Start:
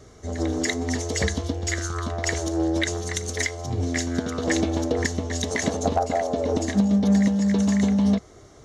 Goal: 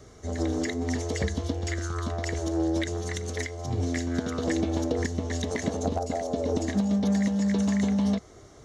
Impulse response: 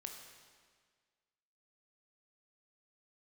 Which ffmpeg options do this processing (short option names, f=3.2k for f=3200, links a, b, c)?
-filter_complex "[0:a]acrossover=split=510|3700[a][b][c];[a]acompressor=threshold=-21dB:ratio=4[d];[b]acompressor=threshold=-33dB:ratio=4[e];[c]acompressor=threshold=-40dB:ratio=4[f];[d][e][f]amix=inputs=3:normalize=0,volume=-1.5dB"